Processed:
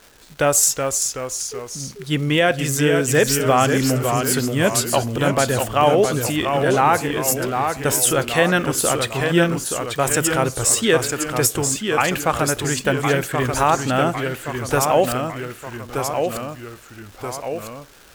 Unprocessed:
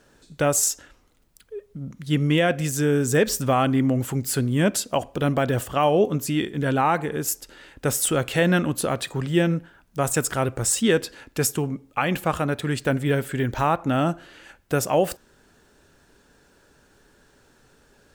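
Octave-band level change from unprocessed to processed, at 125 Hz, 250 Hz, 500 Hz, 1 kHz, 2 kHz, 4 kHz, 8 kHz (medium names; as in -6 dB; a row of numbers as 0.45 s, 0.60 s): +1.5 dB, +1.5 dB, +5.0 dB, +6.0 dB, +6.5 dB, +7.0 dB, +7.0 dB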